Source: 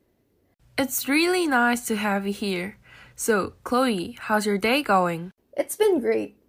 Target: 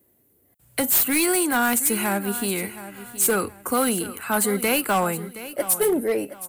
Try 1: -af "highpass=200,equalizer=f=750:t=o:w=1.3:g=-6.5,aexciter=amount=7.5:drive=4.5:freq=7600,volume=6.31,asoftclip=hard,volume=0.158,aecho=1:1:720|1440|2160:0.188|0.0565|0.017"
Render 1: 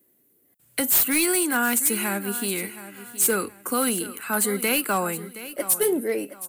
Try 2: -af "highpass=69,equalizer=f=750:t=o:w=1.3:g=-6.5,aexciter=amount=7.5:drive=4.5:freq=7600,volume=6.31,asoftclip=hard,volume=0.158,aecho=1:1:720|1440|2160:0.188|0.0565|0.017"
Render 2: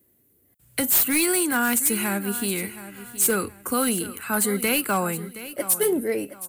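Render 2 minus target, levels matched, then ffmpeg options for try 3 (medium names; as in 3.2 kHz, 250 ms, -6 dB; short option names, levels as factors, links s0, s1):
1 kHz band -3.0 dB
-af "highpass=69,aexciter=amount=7.5:drive=4.5:freq=7600,volume=6.31,asoftclip=hard,volume=0.158,aecho=1:1:720|1440|2160:0.188|0.0565|0.017"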